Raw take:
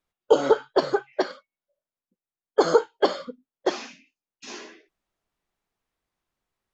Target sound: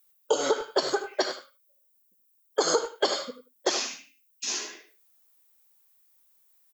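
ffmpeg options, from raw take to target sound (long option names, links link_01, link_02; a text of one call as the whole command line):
ffmpeg -i in.wav -filter_complex "[0:a]highshelf=frequency=4800:gain=10.5,asplit=2[link_01][link_02];[link_02]aecho=0:1:76:0.211[link_03];[link_01][link_03]amix=inputs=2:normalize=0,acompressor=threshold=-19dB:ratio=5,aemphasis=mode=production:type=bsi,asplit=2[link_04][link_05];[link_05]adelay=100,highpass=300,lowpass=3400,asoftclip=type=hard:threshold=-18dB,volume=-12dB[link_06];[link_04][link_06]amix=inputs=2:normalize=0" out.wav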